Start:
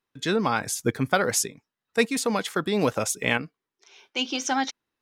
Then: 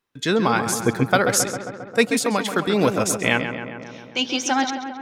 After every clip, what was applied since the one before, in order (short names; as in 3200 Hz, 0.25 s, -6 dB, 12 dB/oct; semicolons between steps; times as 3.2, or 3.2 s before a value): darkening echo 0.134 s, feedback 72%, low-pass 2800 Hz, level -8 dB; gain +4 dB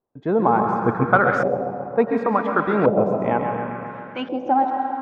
digital reverb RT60 2.1 s, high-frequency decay 0.65×, pre-delay 75 ms, DRR 5.5 dB; LFO low-pass saw up 0.7 Hz 640–1500 Hz; high shelf 5400 Hz -5.5 dB; gain -1.5 dB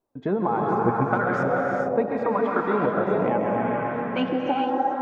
compressor 4:1, threshold -25 dBFS, peak gain reduction 13 dB; flange 0.58 Hz, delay 2.9 ms, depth 5.5 ms, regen +55%; non-linear reverb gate 0.47 s rising, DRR 1.5 dB; gain +6.5 dB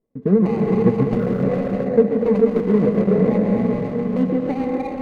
median filter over 41 samples; tilt -2 dB/oct; small resonant body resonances 200/450/1100/2000 Hz, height 12 dB, ringing for 45 ms; gain -3 dB